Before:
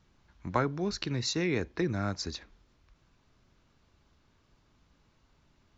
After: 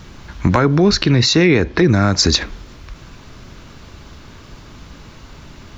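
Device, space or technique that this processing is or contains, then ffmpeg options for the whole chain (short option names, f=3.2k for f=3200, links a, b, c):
mastering chain: -filter_complex "[0:a]equalizer=f=800:t=o:w=0.77:g=-2,acompressor=threshold=-35dB:ratio=3,asoftclip=type=tanh:threshold=-20dB,asoftclip=type=hard:threshold=-24.5dB,alimiter=level_in=31.5dB:limit=-1dB:release=50:level=0:latency=1,asettb=1/sr,asplit=3[a][b][c];[a]atrim=end=0.754[d];[b]atrim=start=0.75:end=1.84,asetpts=PTS-STARTPTS,afade=t=in:d=0.004:c=qsin,afade=t=out:st=1.086:d=0.004:c=qsin,lowpass=5.2k[e];[c]atrim=start=1.836[f];[d][e]acrossfade=d=0.004:c1=hsin:c2=qsin[g];[g][f]acrossfade=d=0.004:c1=qsin:c2=hsin,volume=-3dB"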